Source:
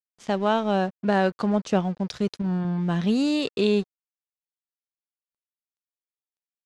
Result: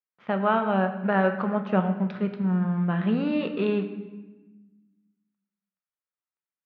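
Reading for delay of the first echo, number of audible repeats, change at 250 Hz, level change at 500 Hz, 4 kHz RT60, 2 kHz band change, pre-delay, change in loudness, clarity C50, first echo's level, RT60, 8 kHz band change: none, none, -1.0 dB, -1.5 dB, 0.90 s, +1.5 dB, 5 ms, -1.0 dB, 9.5 dB, none, 1.2 s, under -30 dB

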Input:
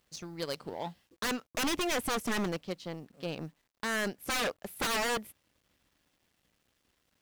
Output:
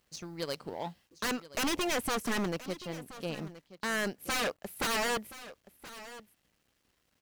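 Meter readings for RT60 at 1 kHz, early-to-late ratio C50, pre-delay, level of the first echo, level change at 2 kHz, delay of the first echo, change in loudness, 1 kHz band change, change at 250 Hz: none, none, none, -16.0 dB, 0.0 dB, 1.025 s, 0.0 dB, 0.0 dB, 0.0 dB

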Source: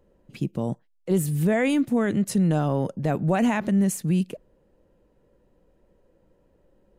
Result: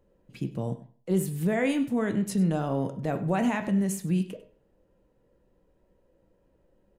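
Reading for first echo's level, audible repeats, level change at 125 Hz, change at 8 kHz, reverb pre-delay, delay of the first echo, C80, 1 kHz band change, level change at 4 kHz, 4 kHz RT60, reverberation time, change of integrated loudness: -17.5 dB, 1, -4.5 dB, -4.5 dB, 12 ms, 99 ms, 14.5 dB, -3.5 dB, -4.0 dB, 0.40 s, 0.45 s, -4.0 dB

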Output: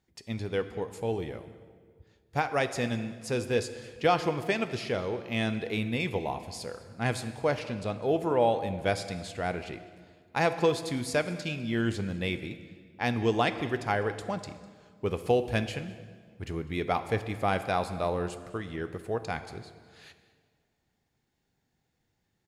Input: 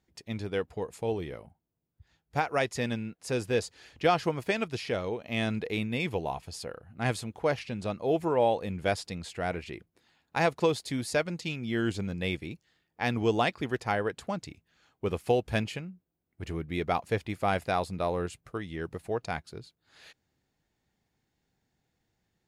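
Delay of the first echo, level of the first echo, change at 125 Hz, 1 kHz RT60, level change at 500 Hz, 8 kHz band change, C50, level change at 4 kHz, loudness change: 0.202 s, -20.5 dB, +1.0 dB, 1.7 s, +0.5 dB, +0.5 dB, 11.5 dB, +0.5 dB, +0.5 dB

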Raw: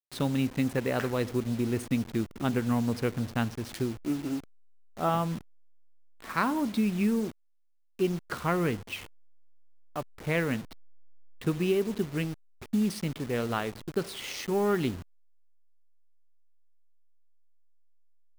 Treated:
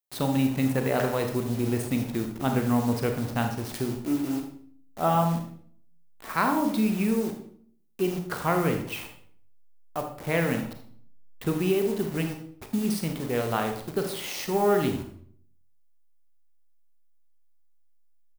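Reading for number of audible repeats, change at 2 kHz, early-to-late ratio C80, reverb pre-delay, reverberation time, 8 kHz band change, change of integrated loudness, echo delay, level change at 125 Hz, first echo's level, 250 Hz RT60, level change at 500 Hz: 1, +2.0 dB, 11.0 dB, 30 ms, 0.55 s, +5.0 dB, +3.0 dB, 78 ms, +3.0 dB, -13.0 dB, 0.70 s, +3.5 dB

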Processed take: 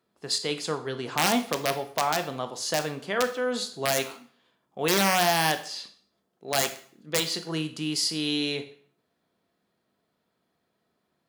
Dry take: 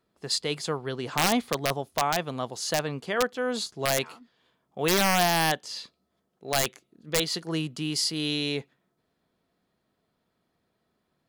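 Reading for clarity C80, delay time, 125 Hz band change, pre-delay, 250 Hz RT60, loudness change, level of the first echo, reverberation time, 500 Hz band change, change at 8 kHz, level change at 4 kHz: 16.5 dB, none, -2.5 dB, 13 ms, 0.55 s, +0.5 dB, none, 0.50 s, +0.5 dB, +0.5 dB, +0.5 dB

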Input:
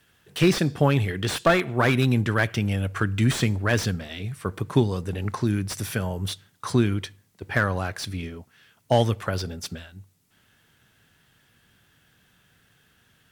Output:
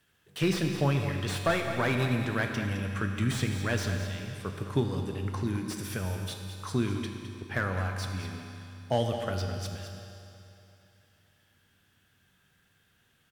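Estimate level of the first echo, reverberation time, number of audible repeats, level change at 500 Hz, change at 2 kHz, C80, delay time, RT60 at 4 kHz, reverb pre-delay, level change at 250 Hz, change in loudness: -10.0 dB, 2.9 s, 1, -6.5 dB, -6.0 dB, 4.5 dB, 0.211 s, 2.8 s, 10 ms, -6.5 dB, -6.5 dB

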